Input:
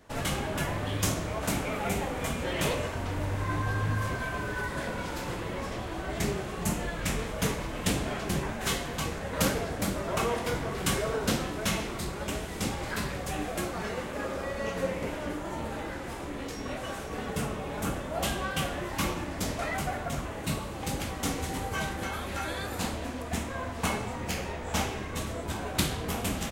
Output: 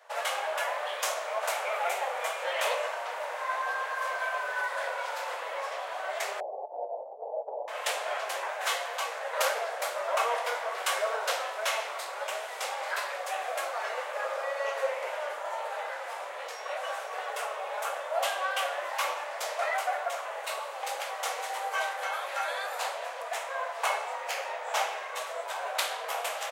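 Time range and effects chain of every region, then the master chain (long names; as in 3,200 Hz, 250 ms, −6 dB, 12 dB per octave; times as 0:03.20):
0:06.40–0:07.68: Butterworth low-pass 860 Hz 72 dB per octave + spectral tilt −2 dB per octave + compressor whose output falls as the input rises −27 dBFS, ratio −0.5
whole clip: Butterworth high-pass 540 Hz 48 dB per octave; high-shelf EQ 3,100 Hz −8.5 dB; level +5 dB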